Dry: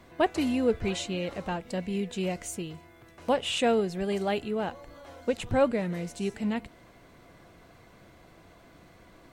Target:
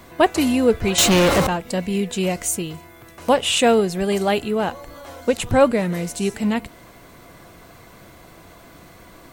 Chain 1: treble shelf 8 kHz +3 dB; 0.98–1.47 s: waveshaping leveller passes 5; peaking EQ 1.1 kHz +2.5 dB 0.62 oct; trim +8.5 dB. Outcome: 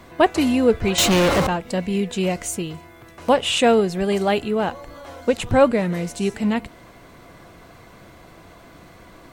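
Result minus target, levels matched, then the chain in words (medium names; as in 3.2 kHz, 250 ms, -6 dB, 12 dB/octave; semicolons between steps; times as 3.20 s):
8 kHz band -3.5 dB
treble shelf 8 kHz +13 dB; 0.98–1.47 s: waveshaping leveller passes 5; peaking EQ 1.1 kHz +2.5 dB 0.62 oct; trim +8.5 dB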